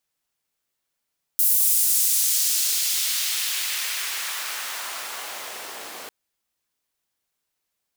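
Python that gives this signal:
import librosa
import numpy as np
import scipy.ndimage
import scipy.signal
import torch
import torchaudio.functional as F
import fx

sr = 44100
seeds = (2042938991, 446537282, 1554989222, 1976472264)

y = fx.riser_noise(sr, seeds[0], length_s=4.7, colour='pink', kind='highpass', start_hz=12000.0, end_hz=440.0, q=0.89, swell_db=-27, law='exponential')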